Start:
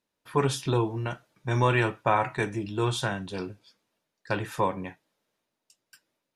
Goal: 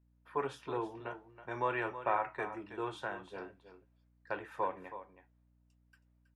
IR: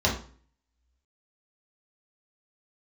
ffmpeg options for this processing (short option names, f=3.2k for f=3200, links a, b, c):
-filter_complex "[0:a]acrossover=split=340 2400:gain=0.141 1 0.141[a][b][c];[a][b][c]amix=inputs=3:normalize=0,aecho=1:1:322:0.251,aeval=exprs='val(0)+0.000891*(sin(2*PI*60*n/s)+sin(2*PI*2*60*n/s)/2+sin(2*PI*3*60*n/s)/3+sin(2*PI*4*60*n/s)/4+sin(2*PI*5*60*n/s)/5)':c=same,volume=-7.5dB"